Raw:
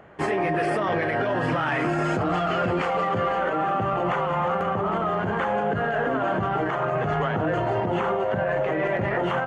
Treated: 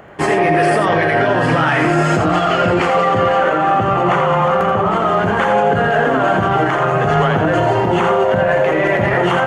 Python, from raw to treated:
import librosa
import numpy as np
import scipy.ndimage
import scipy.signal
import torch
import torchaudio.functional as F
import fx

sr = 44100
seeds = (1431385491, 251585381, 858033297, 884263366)

y = fx.high_shelf(x, sr, hz=4900.0, db=fx.steps((0.0, 7.0), (4.89, 12.0)))
y = y + 10.0 ** (-6.5 / 20.0) * np.pad(y, (int(84 * sr / 1000.0), 0))[:len(y)]
y = y * librosa.db_to_amplitude(8.5)